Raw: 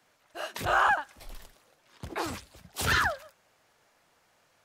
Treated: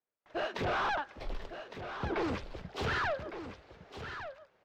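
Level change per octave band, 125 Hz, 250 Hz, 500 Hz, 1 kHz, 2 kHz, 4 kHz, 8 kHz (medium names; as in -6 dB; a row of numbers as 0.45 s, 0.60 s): -1.5 dB, +3.0 dB, +1.0 dB, -6.5 dB, -7.5 dB, -6.0 dB, -16.5 dB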